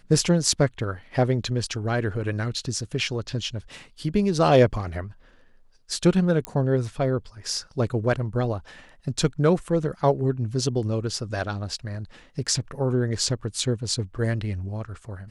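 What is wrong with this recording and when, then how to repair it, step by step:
6.45 pop -13 dBFS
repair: de-click

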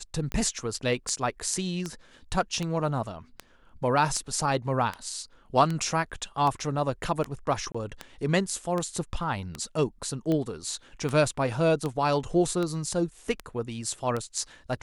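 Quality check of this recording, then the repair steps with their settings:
tick 78 rpm -17 dBFS
7.72–7.75 gap 25 ms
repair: de-click; interpolate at 7.72, 25 ms

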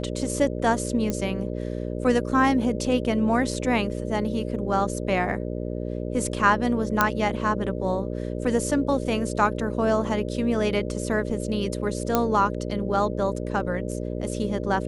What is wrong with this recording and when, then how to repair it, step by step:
buzz 60 Hz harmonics 10 -30 dBFS
1.1 pop -13 dBFS
7.01 pop -4 dBFS
12.15 pop -6 dBFS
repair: de-click; de-hum 60 Hz, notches 10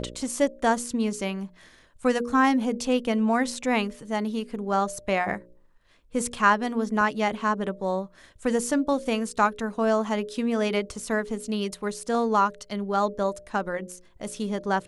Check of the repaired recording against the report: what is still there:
1.1 pop

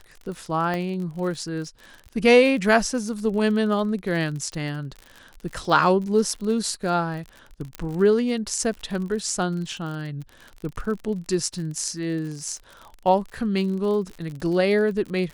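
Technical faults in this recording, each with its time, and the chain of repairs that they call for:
crackle 48/s -32 dBFS
0.74 pop -15 dBFS
7.75 pop -15 dBFS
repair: de-click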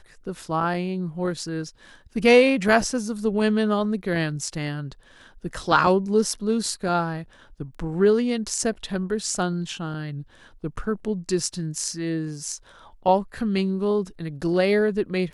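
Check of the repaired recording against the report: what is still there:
7.75 pop

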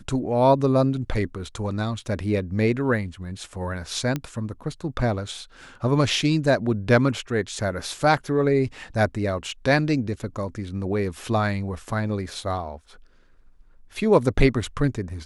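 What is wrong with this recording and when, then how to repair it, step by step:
4.16 pop -13 dBFS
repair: de-click

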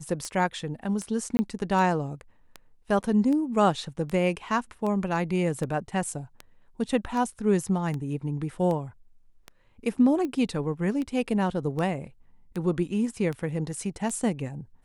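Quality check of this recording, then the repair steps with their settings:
tick 78 rpm -21 dBFS
1.37–1.39 gap 20 ms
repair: de-click; interpolate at 1.37, 20 ms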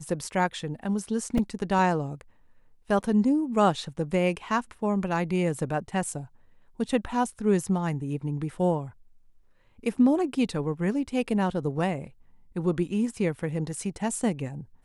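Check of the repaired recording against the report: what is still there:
none

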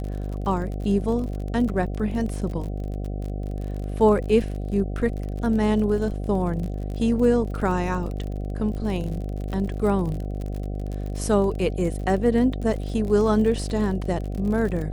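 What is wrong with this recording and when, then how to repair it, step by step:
buzz 50 Hz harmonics 15 -29 dBFS
crackle 47/s -31 dBFS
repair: de-click; de-hum 50 Hz, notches 15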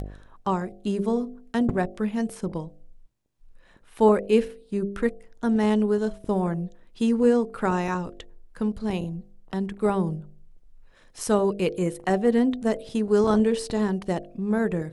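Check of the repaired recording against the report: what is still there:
none

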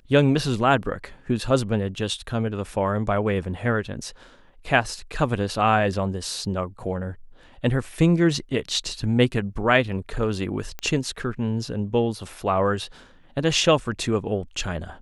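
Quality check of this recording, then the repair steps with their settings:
10.79 pop -16 dBFS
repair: de-click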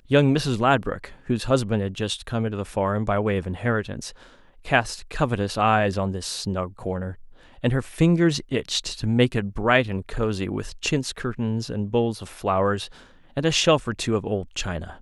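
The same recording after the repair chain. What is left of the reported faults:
none

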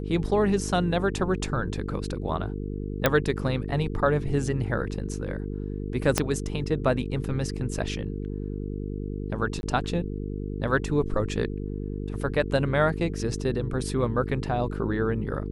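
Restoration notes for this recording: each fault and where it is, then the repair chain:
buzz 50 Hz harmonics 9 -32 dBFS
3.06 pop -5 dBFS
6.18 pop -5 dBFS
9.61–9.63 gap 21 ms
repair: de-click; de-hum 50 Hz, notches 9; interpolate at 9.61, 21 ms

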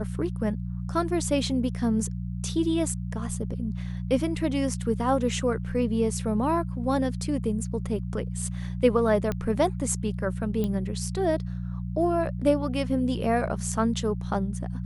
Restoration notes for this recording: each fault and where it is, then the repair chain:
hum 60 Hz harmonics 3 -32 dBFS
9.32 pop -16 dBFS
10.64 pop -17 dBFS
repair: de-click; de-hum 60 Hz, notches 3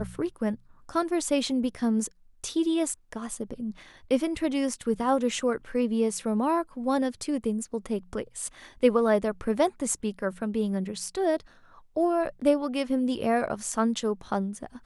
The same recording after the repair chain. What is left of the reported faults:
none

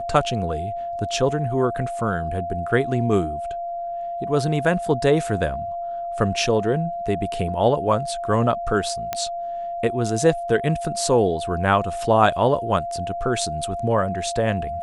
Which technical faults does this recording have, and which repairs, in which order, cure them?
tone 690 Hz -26 dBFS
9.13 pop -10 dBFS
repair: de-click; notch 690 Hz, Q 30

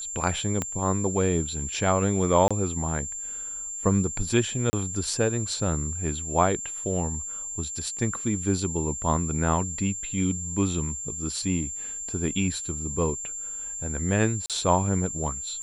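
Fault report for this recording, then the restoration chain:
tone 7300 Hz -32 dBFS
0.62 pop -13 dBFS
2.48–2.51 gap 26 ms
4.7–4.73 gap 30 ms
14.46–14.5 gap 37 ms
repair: de-click; notch 7300 Hz, Q 30; interpolate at 2.48, 26 ms; interpolate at 4.7, 30 ms; interpolate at 14.46, 37 ms

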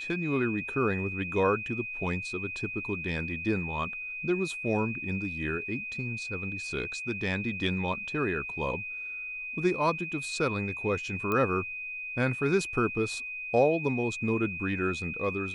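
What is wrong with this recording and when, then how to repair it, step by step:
tone 2500 Hz -35 dBFS
11.32 pop -17 dBFS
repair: de-click; notch 2500 Hz, Q 30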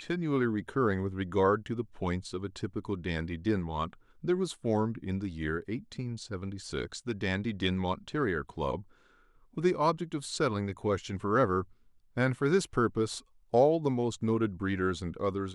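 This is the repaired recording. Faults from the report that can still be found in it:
none

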